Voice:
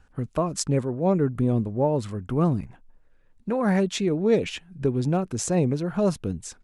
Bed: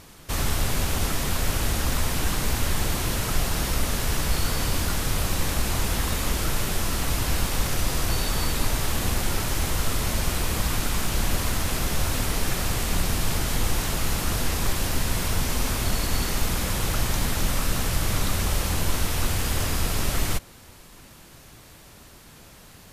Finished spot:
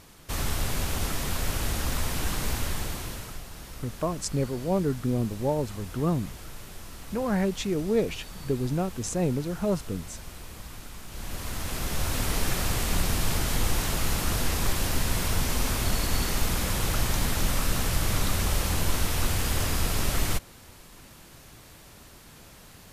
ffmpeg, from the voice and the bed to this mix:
ffmpeg -i stem1.wav -i stem2.wav -filter_complex "[0:a]adelay=3650,volume=-4dB[link_01];[1:a]volume=11.5dB,afade=type=out:start_time=2.51:duration=0.91:silence=0.223872,afade=type=in:start_time=11.07:duration=1.29:silence=0.16788[link_02];[link_01][link_02]amix=inputs=2:normalize=0" out.wav

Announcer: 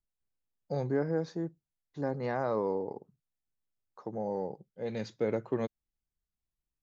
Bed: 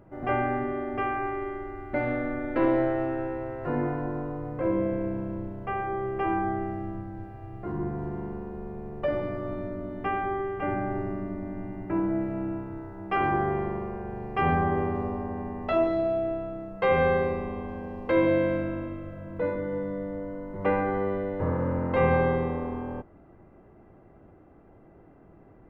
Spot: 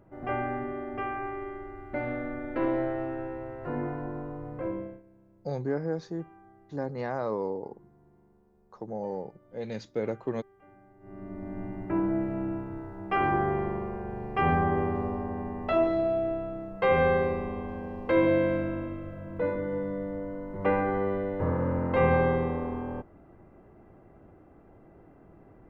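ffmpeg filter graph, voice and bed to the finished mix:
ffmpeg -i stem1.wav -i stem2.wav -filter_complex "[0:a]adelay=4750,volume=0dB[link_01];[1:a]volume=22.5dB,afade=type=out:start_time=4.57:duration=0.45:silence=0.0707946,afade=type=in:start_time=11:duration=0.63:silence=0.0446684[link_02];[link_01][link_02]amix=inputs=2:normalize=0" out.wav

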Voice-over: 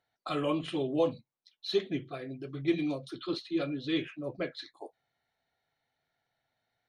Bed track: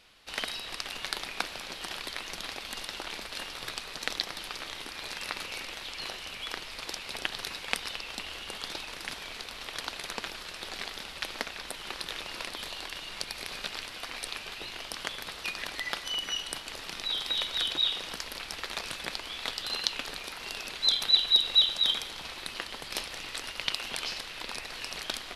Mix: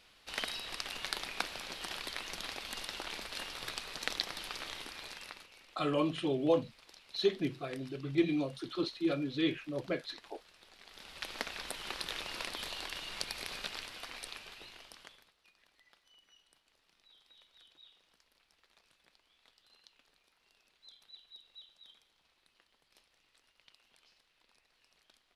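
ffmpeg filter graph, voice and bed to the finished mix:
ffmpeg -i stem1.wav -i stem2.wav -filter_complex "[0:a]adelay=5500,volume=-0.5dB[link_01];[1:a]volume=14.5dB,afade=type=out:start_time=4.72:duration=0.77:silence=0.141254,afade=type=in:start_time=10.83:duration=0.71:silence=0.125893,afade=type=out:start_time=13.27:duration=2.05:silence=0.0316228[link_02];[link_01][link_02]amix=inputs=2:normalize=0" out.wav

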